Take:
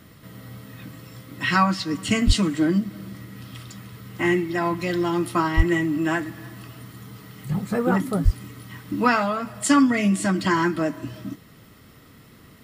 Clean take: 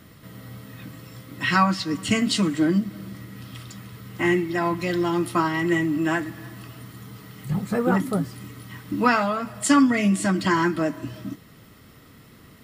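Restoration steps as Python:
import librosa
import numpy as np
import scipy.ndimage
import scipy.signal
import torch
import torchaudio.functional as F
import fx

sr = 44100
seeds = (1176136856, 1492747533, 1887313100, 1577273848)

y = fx.highpass(x, sr, hz=140.0, slope=24, at=(2.26, 2.38), fade=0.02)
y = fx.highpass(y, sr, hz=140.0, slope=24, at=(5.56, 5.68), fade=0.02)
y = fx.highpass(y, sr, hz=140.0, slope=24, at=(8.24, 8.36), fade=0.02)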